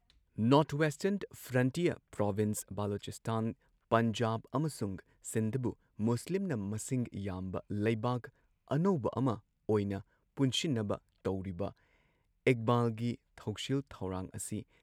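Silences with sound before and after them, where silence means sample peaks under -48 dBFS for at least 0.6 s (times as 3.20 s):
11.71–12.47 s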